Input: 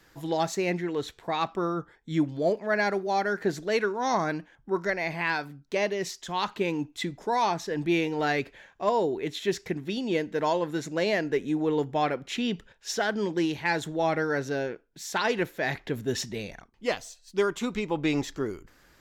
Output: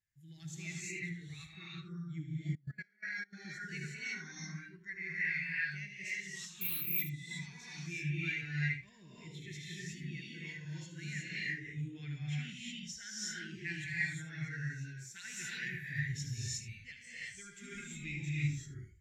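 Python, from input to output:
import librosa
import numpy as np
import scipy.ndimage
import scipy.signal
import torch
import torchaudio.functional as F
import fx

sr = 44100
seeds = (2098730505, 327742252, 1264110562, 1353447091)

y = fx.graphic_eq(x, sr, hz=(125, 250, 500, 1000, 2000, 4000, 8000), db=(3, -7, -12, -12, 8, -4, 6))
y = fx.rev_gated(y, sr, seeds[0], gate_ms=390, shape='rising', drr_db=-6.0)
y = fx.resample_bad(y, sr, factor=3, down='filtered', up='zero_stuff', at=(6.61, 7.02))
y = fx.highpass(y, sr, hz=56.0, slope=6)
y = fx.tone_stack(y, sr, knobs='6-0-2')
y = y + 10.0 ** (-8.5 / 20.0) * np.pad(y, (int(75 * sr / 1000.0), 0))[:len(y)]
y = fx.level_steps(y, sr, step_db=22, at=(2.55, 3.33))
y = fx.spectral_expand(y, sr, expansion=1.5)
y = y * 10.0 ** (3.5 / 20.0)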